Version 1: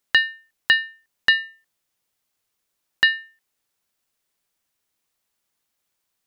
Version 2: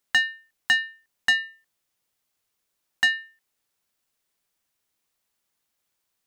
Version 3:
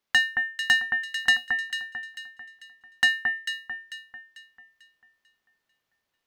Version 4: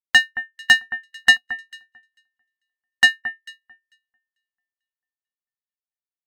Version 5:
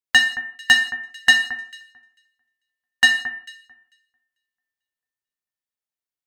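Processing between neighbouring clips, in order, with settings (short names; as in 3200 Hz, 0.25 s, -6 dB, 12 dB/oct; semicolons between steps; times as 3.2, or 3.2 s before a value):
soft clip -11.5 dBFS, distortion -13 dB; gain -1 dB
median filter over 5 samples; echo with dull and thin repeats by turns 0.222 s, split 1900 Hz, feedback 61%, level -3 dB
upward expander 2.5:1, over -44 dBFS; gain +9 dB
reverb, pre-delay 3 ms, DRR 3.5 dB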